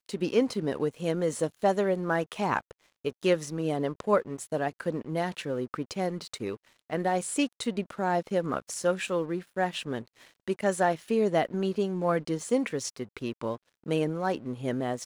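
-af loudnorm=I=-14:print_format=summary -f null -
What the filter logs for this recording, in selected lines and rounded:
Input Integrated:    -30.1 LUFS
Input True Peak:     -11.7 dBTP
Input LRA:             2.7 LU
Input Threshold:     -40.2 LUFS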